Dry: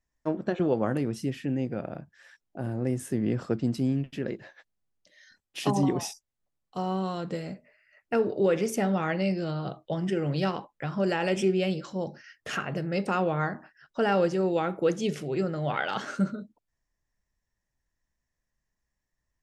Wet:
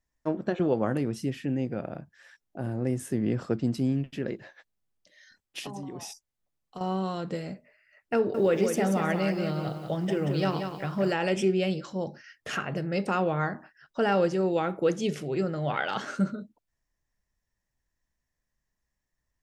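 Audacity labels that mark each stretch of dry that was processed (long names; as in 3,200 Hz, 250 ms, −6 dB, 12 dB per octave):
5.590000	6.810000	downward compressor 8 to 1, threshold −35 dBFS
8.160000	11.130000	feedback echo at a low word length 183 ms, feedback 35%, word length 9 bits, level −6.5 dB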